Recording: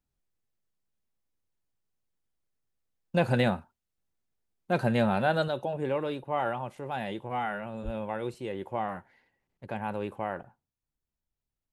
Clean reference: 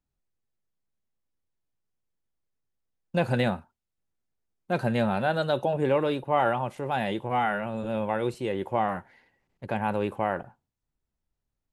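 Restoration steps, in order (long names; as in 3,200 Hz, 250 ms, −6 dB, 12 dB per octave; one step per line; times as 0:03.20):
0:05.48: level correction +6 dB
0:07.84–0:07.96: high-pass filter 140 Hz 24 dB per octave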